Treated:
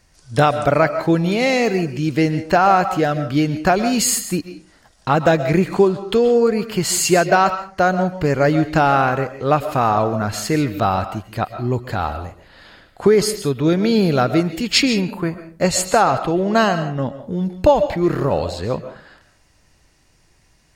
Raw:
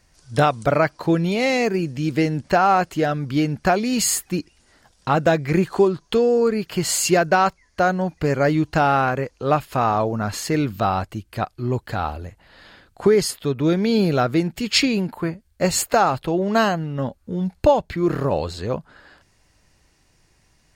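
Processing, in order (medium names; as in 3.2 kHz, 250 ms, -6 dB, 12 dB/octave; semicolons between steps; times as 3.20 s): 15.64–17.21 s: low-pass 11 kHz 12 dB/octave; reverberation RT60 0.40 s, pre-delay 95 ms, DRR 10.5 dB; trim +2.5 dB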